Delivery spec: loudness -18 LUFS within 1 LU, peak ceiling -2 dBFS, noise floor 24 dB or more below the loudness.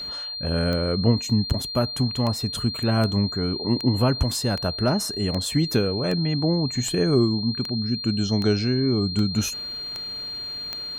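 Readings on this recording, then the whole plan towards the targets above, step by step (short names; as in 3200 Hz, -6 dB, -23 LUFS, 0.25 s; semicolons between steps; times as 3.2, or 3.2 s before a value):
clicks 14; steady tone 4200 Hz; tone level -30 dBFS; loudness -23.5 LUFS; peak -8.0 dBFS; loudness target -18.0 LUFS
-> de-click; notch 4200 Hz, Q 30; gain +5.5 dB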